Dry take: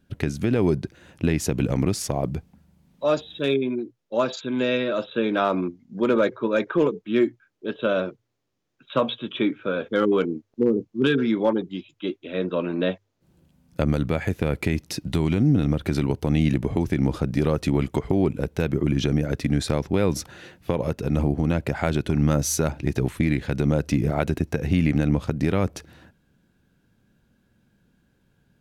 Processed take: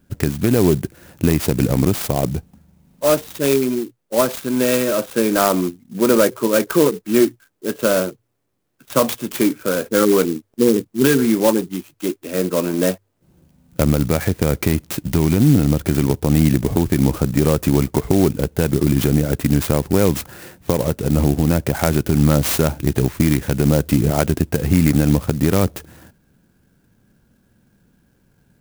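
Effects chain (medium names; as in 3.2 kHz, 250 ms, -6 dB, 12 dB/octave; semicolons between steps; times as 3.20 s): sampling jitter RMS 0.072 ms; trim +6 dB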